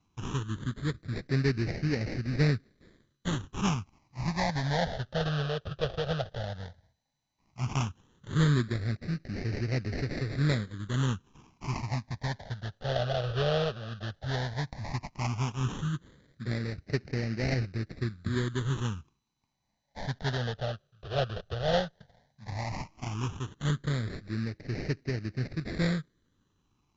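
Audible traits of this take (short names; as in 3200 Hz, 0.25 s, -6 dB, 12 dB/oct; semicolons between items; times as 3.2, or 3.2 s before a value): aliases and images of a low sample rate 1400 Hz, jitter 20%; phasing stages 8, 0.13 Hz, lowest notch 280–1000 Hz; MP2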